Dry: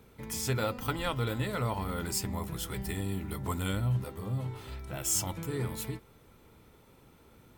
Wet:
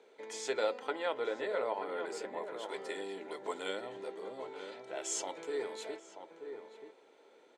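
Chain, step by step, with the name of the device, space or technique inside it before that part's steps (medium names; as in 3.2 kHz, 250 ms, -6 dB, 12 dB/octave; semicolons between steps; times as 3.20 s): 0.79–2.69 s: FFT filter 1.7 kHz 0 dB, 6.4 kHz -10 dB, 16 kHz -2 dB; phone speaker on a table (cabinet simulation 380–6600 Hz, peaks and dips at 430 Hz +4 dB, 610 Hz +3 dB, 1.2 kHz -9 dB, 2.7 kHz -4 dB, 5.3 kHz -8 dB); echo from a far wall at 160 m, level -8 dB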